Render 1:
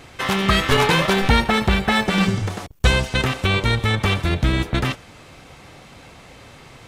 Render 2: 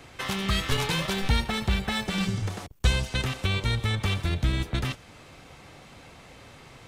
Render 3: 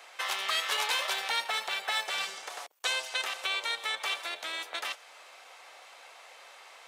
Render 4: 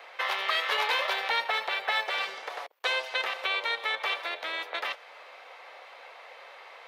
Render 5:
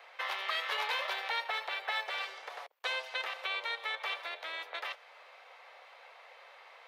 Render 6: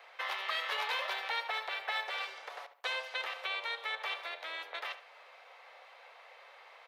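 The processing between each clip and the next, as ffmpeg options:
ffmpeg -i in.wav -filter_complex "[0:a]acrossover=split=160|3000[link_01][link_02][link_03];[link_02]acompressor=threshold=-31dB:ratio=2[link_04];[link_01][link_04][link_03]amix=inputs=3:normalize=0,volume=-5dB" out.wav
ffmpeg -i in.wav -af "highpass=frequency=600:width=0.5412,highpass=frequency=600:width=1.3066" out.wav
ffmpeg -i in.wav -af "equalizer=frequency=125:width_type=o:width=1:gain=-5,equalizer=frequency=250:width_type=o:width=1:gain=5,equalizer=frequency=500:width_type=o:width=1:gain=11,equalizer=frequency=1000:width_type=o:width=1:gain=6,equalizer=frequency=2000:width_type=o:width=1:gain=8,equalizer=frequency=4000:width_type=o:width=1:gain=5,equalizer=frequency=8000:width_type=o:width=1:gain=-11,volume=-5dB" out.wav
ffmpeg -i in.wav -af "highpass=430,volume=-6.5dB" out.wav
ffmpeg -i in.wav -filter_complex "[0:a]asplit=2[link_01][link_02];[link_02]adelay=71,lowpass=frequency=3300:poles=1,volume=-12dB,asplit=2[link_03][link_04];[link_04]adelay=71,lowpass=frequency=3300:poles=1,volume=0.35,asplit=2[link_05][link_06];[link_06]adelay=71,lowpass=frequency=3300:poles=1,volume=0.35,asplit=2[link_07][link_08];[link_08]adelay=71,lowpass=frequency=3300:poles=1,volume=0.35[link_09];[link_01][link_03][link_05][link_07][link_09]amix=inputs=5:normalize=0,volume=-1dB" out.wav

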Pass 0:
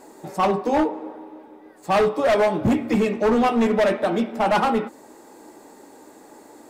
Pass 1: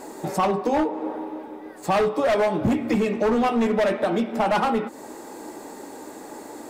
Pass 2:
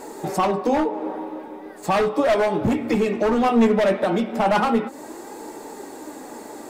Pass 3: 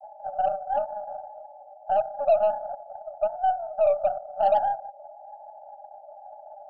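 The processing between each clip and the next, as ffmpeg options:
ffmpeg -i in.wav -af "acompressor=threshold=-30dB:ratio=3,volume=7.5dB" out.wav
ffmpeg -i in.wav -af "flanger=delay=2.2:depth=3.3:regen=70:speed=0.36:shape=sinusoidal,volume=6dB" out.wav
ffmpeg -i in.wav -af "asuperpass=centerf=700:order=20:qfactor=2.5,aeval=exprs='0.282*(cos(1*acos(clip(val(0)/0.282,-1,1)))-cos(1*PI/2))+0.00794*(cos(6*acos(clip(val(0)/0.282,-1,1)))-cos(6*PI/2))':channel_layout=same" out.wav

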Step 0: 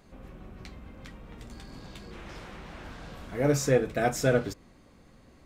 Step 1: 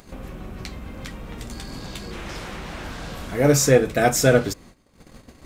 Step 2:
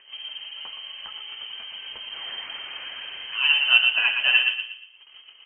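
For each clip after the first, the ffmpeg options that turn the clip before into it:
ffmpeg -i in.wav -filter_complex "[0:a]agate=range=-21dB:threshold=-53dB:ratio=16:detection=peak,highshelf=frequency=4700:gain=7.5,asplit=2[link_01][link_02];[link_02]acompressor=mode=upward:threshold=-34dB:ratio=2.5,volume=3dB[link_03];[link_01][link_03]amix=inputs=2:normalize=0" out.wav
ffmpeg -i in.wav -filter_complex "[0:a]flanger=delay=0.7:depth=8.3:regen=57:speed=0.43:shape=sinusoidal,asplit=2[link_01][link_02];[link_02]adelay=118,lowpass=frequency=1900:poles=1,volume=-4.5dB,asplit=2[link_03][link_04];[link_04]adelay=118,lowpass=frequency=1900:poles=1,volume=0.4,asplit=2[link_05][link_06];[link_06]adelay=118,lowpass=frequency=1900:poles=1,volume=0.4,asplit=2[link_07][link_08];[link_08]adelay=118,lowpass=frequency=1900:poles=1,volume=0.4,asplit=2[link_09][link_10];[link_10]adelay=118,lowpass=frequency=1900:poles=1,volume=0.4[link_11];[link_03][link_05][link_07][link_09][link_11]amix=inputs=5:normalize=0[link_12];[link_01][link_12]amix=inputs=2:normalize=0,lowpass=frequency=2700:width_type=q:width=0.5098,lowpass=frequency=2700:width_type=q:width=0.6013,lowpass=frequency=2700:width_type=q:width=0.9,lowpass=frequency=2700:width_type=q:width=2.563,afreqshift=-3200" out.wav

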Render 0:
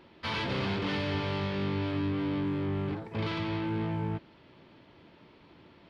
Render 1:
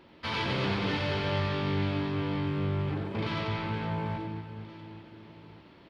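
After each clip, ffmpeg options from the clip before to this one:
ffmpeg -i in.wav -af "aecho=1:1:90|234|464.4|833|1423:0.631|0.398|0.251|0.158|0.1" out.wav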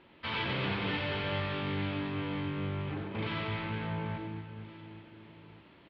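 ffmpeg -i in.wav -filter_complex "[0:a]lowpass=frequency=3300:width=0.5412,lowpass=frequency=3300:width=1.3066,highshelf=frequency=2400:gain=8.5,asplit=2[link_01][link_02];[link_02]adelay=37,volume=-13dB[link_03];[link_01][link_03]amix=inputs=2:normalize=0,volume=-4.5dB" out.wav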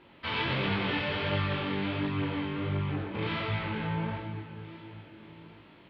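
ffmpeg -i in.wav -af "flanger=delay=19.5:depth=5.7:speed=1.4,volume=6dB" out.wav

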